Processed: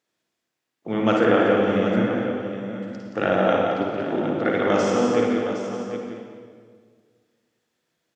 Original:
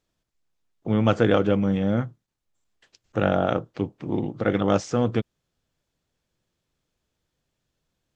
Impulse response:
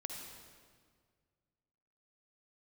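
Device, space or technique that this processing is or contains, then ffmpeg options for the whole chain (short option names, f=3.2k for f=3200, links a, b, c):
stadium PA: -filter_complex "[0:a]highpass=230,equalizer=f=1.9k:t=o:w=0.63:g=5,aecho=1:1:174.9|230.3:0.501|0.251[a];[1:a]atrim=start_sample=2205[b];[a][b]afir=irnorm=-1:irlink=0,asettb=1/sr,asplit=3[c][d][e];[c]atrim=end=1.214[f];[d]atrim=start=1.21:end=1.66,asetpts=PTS-STARTPTS,afade=t=in:d=0.004:c=qsin,afade=t=out:st=0.446:d=0.004:c=qsin,acrossover=split=2800[g][h];[h]acompressor=threshold=-47dB:ratio=4:attack=1:release=60[i];[g][i]amix=inputs=2:normalize=0[j];[e]atrim=start=1.656[k];[f][j]acrossfade=d=0.004:c1=hsin:c2=qsin[l];[l][k]acrossfade=d=0.004:c1=qsin:c2=hsin,aecho=1:1:53|765:0.531|0.316,volume=3dB"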